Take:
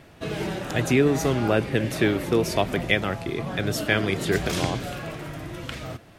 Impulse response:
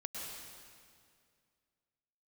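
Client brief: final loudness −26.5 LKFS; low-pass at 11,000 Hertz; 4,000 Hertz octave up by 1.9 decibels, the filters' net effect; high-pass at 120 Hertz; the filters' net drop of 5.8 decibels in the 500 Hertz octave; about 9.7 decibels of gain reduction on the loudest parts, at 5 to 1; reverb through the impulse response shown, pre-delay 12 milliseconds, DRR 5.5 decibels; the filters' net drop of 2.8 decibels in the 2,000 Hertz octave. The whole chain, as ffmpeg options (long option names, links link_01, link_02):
-filter_complex "[0:a]highpass=120,lowpass=11000,equalizer=frequency=500:width_type=o:gain=-7.5,equalizer=frequency=2000:width_type=o:gain=-4,equalizer=frequency=4000:width_type=o:gain=4,acompressor=threshold=-30dB:ratio=5,asplit=2[link_01][link_02];[1:a]atrim=start_sample=2205,adelay=12[link_03];[link_02][link_03]afir=irnorm=-1:irlink=0,volume=-5.5dB[link_04];[link_01][link_04]amix=inputs=2:normalize=0,volume=6.5dB"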